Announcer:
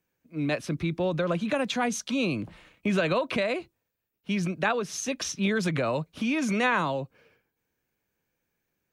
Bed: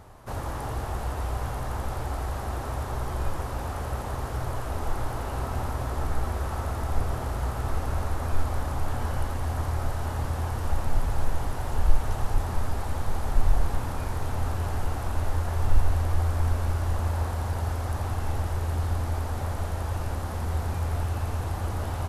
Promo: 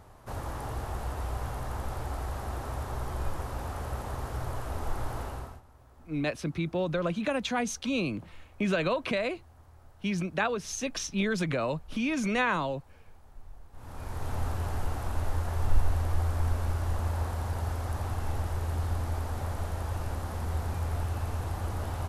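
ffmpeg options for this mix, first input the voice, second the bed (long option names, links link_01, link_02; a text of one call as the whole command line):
ffmpeg -i stem1.wav -i stem2.wav -filter_complex "[0:a]adelay=5750,volume=-2.5dB[link_01];[1:a]volume=19.5dB,afade=type=out:start_time=5.21:duration=0.4:silence=0.0707946,afade=type=in:start_time=13.72:duration=0.62:silence=0.0668344[link_02];[link_01][link_02]amix=inputs=2:normalize=0" out.wav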